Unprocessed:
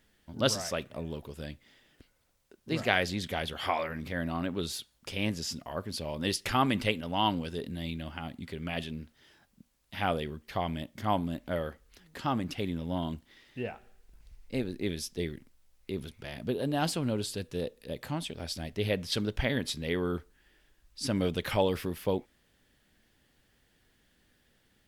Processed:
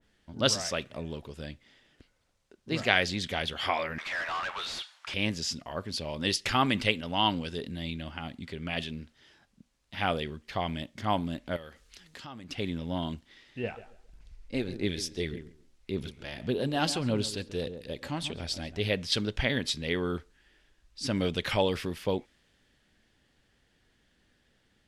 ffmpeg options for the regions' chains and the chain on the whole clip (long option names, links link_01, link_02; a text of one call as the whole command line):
ffmpeg -i in.wav -filter_complex "[0:a]asettb=1/sr,asplit=3[link_01][link_02][link_03];[link_01]atrim=end=3.984[link_04];[link_02]atrim=start=3.98:end=5.14,asetpts=PTS-STARTPTS,afade=type=in:duration=0.004:curve=qsin,afade=type=out:start_time=1.156:duration=0.004:curve=qsin,highpass=frequency=830:width=0.5412,highpass=frequency=830:width=1.3066,asplit=2[link_05][link_06];[link_06]highpass=frequency=720:poles=1,volume=29dB,asoftclip=type=tanh:threshold=-24.5dB[link_07];[link_05][link_07]amix=inputs=2:normalize=0,lowpass=frequency=1300:poles=1,volume=-6dB[link_08];[link_03]atrim=start=5.136[link_09];[link_04][link_08]acrossfade=duration=0.004:curve1=hsin:curve2=qsin[link_10];[link_10][link_09]acrossfade=duration=0.004:curve1=qsin:curve2=hsin,asettb=1/sr,asplit=3[link_11][link_12][link_13];[link_11]atrim=end=11.564[link_14];[link_12]atrim=start=11.56:end=12.51,asetpts=PTS-STARTPTS,afade=type=in:duration=0.004:curve=qsin,afade=type=out:start_time=0.946:duration=0.004:curve=qsin,highshelf=frequency=2100:gain=9,acompressor=threshold=-46dB:ratio=3:attack=3.2:release=140:knee=1:detection=peak[link_15];[link_13]atrim=start=12.506[link_16];[link_14][link_15]acrossfade=duration=0.004:curve1=hsin:curve2=qsin[link_17];[link_17][link_16]acrossfade=duration=0.004:curve1=qsin:curve2=hsin,asettb=1/sr,asplit=3[link_18][link_19][link_20];[link_18]atrim=end=13.634[link_21];[link_19]atrim=start=13.63:end=18.8,asetpts=PTS-STARTPTS,afade=type=in:duration=0.004:curve=qsin,afade=type=out:start_time=5.166:duration=0.004:curve=qsin,asplit=2[link_22][link_23];[link_23]adelay=136,lowpass=frequency=1400:poles=1,volume=-11.5dB,asplit=2[link_24][link_25];[link_25]adelay=136,lowpass=frequency=1400:poles=1,volume=0.25,asplit=2[link_26][link_27];[link_27]adelay=136,lowpass=frequency=1400:poles=1,volume=0.25[link_28];[link_22][link_24][link_26][link_28]amix=inputs=4:normalize=0,atrim=end_sample=227997,aphaser=in_gain=1:out_gain=1:delay=3.7:decay=0.3:speed=1.7:type=sinusoidal[link_29];[link_20]atrim=start=18.796[link_30];[link_21][link_29]acrossfade=duration=0.004:curve1=hsin:curve2=qsin[link_31];[link_31][link_30]acrossfade=duration=0.004:curve1=qsin:curve2=hsin,lowpass=7600,adynamicequalizer=threshold=0.00631:dfrequency=1600:dqfactor=0.7:tfrequency=1600:tqfactor=0.7:attack=5:release=100:ratio=0.375:range=2.5:mode=boostabove:tftype=highshelf" out.wav